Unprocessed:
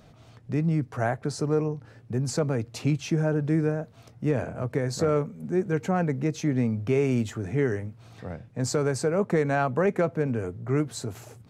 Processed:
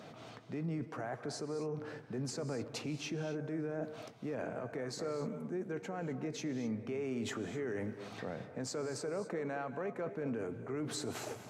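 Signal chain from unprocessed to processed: HPF 230 Hz 12 dB/oct; high shelf 7600 Hz -10.5 dB; reverse; compressor 12:1, threshold -36 dBFS, peak gain reduction 16.5 dB; reverse; limiter -37 dBFS, peak gain reduction 9.5 dB; non-linear reverb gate 0.28 s rising, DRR 10.5 dB; gain +6 dB

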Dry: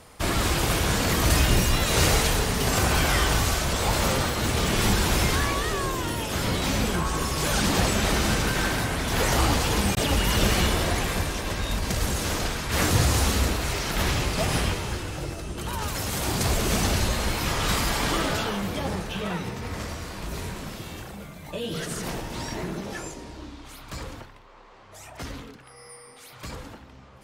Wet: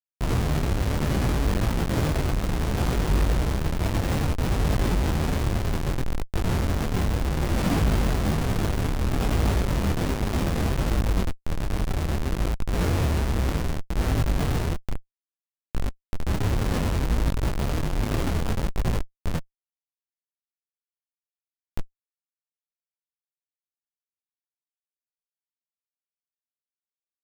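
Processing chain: median filter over 15 samples; Schmitt trigger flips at -22.5 dBFS; detuned doubles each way 22 cents; gain +8 dB

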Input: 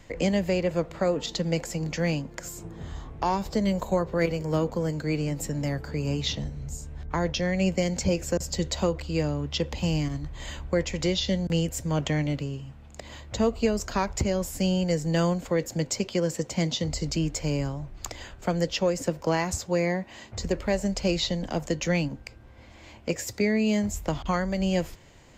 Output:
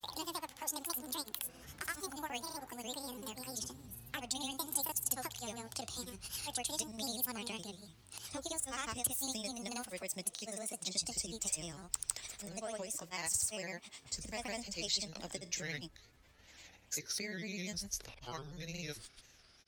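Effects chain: speed glide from 183% -> 75%; in parallel at +2 dB: compressor, threshold -32 dBFS, peak gain reduction 12.5 dB; on the sum: grains, grains 20/s, pitch spread up and down by 3 st; pre-emphasis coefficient 0.9; gain -3 dB

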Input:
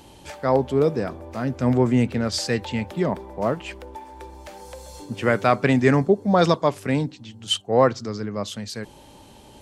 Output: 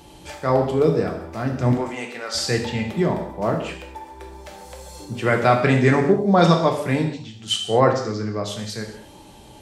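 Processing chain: 1.72–2.35 HPF 670 Hz 12 dB/oct; non-linear reverb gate 0.26 s falling, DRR 1.5 dB

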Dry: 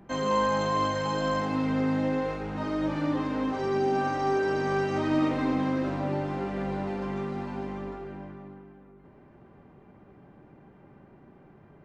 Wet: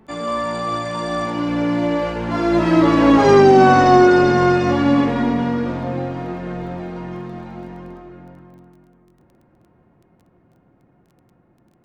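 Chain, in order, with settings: Doppler pass-by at 3.45, 36 m/s, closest 18 m; crackle 15/s -62 dBFS; maximiser +20 dB; gain -1 dB

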